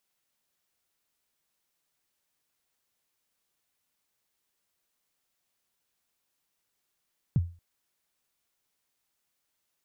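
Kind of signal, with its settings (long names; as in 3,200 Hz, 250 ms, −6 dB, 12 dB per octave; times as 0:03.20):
synth kick length 0.23 s, from 170 Hz, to 86 Hz, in 34 ms, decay 0.34 s, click off, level −17 dB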